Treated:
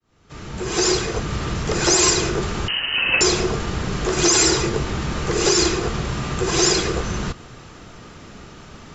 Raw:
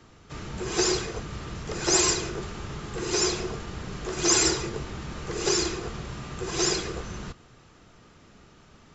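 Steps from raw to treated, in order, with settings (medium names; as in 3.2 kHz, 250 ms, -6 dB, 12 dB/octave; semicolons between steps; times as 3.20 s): fade-in on the opening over 1.42 s; in parallel at -3 dB: compression, threshold -36 dBFS, peak gain reduction 17.5 dB; 2.68–3.21 s: on the sum: frequency inversion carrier 3 kHz; loudness maximiser +14 dB; trim -5.5 dB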